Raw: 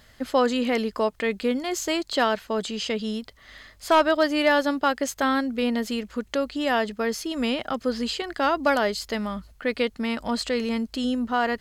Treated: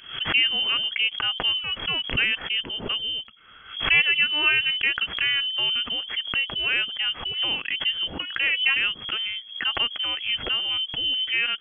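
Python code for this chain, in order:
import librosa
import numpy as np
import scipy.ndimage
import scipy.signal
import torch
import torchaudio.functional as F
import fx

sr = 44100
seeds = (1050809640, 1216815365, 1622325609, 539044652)

y = fx.high_shelf(x, sr, hz=2500.0, db=-9.0)
y = fx.freq_invert(y, sr, carrier_hz=3300)
y = fx.pre_swell(y, sr, db_per_s=110.0)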